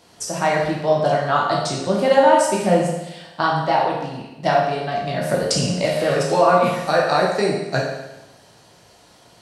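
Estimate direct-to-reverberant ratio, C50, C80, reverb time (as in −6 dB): −2.5 dB, 2.0 dB, 5.0 dB, 1.0 s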